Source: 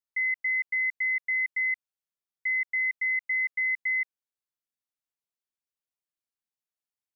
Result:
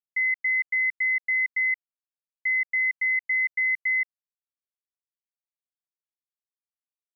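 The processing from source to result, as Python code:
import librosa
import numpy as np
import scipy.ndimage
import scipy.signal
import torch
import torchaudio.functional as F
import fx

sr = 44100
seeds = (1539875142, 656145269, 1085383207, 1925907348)

y = fx.quant_dither(x, sr, seeds[0], bits=12, dither='none')
y = fx.bass_treble(y, sr, bass_db=4, treble_db=-7)
y = y * 10.0 ** (3.5 / 20.0)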